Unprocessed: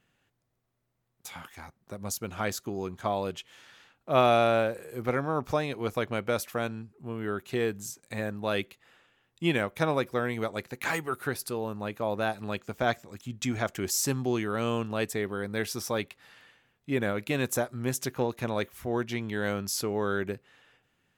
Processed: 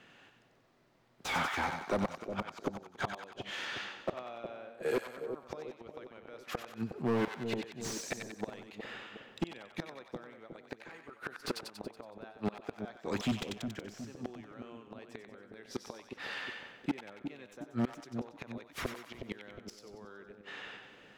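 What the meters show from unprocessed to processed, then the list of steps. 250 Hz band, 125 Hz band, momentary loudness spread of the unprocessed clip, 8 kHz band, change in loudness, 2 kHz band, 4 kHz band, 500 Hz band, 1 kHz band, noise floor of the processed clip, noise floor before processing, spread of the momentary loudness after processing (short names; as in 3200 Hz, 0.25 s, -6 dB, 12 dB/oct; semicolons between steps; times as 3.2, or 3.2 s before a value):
-6.5 dB, -10.5 dB, 11 LU, -13.0 dB, -9.5 dB, -7.5 dB, -6.5 dB, -11.0 dB, -9.5 dB, -61 dBFS, -77 dBFS, 15 LU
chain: tracing distortion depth 0.025 ms; three-band isolator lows -13 dB, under 190 Hz, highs -17 dB, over 5800 Hz; in parallel at -1.5 dB: limiter -18.5 dBFS, peak gain reduction 9 dB; on the sum: flipped gate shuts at -22 dBFS, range -36 dB; hard clip -35 dBFS, distortion -6 dB; on a send: split-band echo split 690 Hz, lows 0.363 s, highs 93 ms, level -7 dB; on the sum: slew limiter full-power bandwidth 20 Hz; gain +9 dB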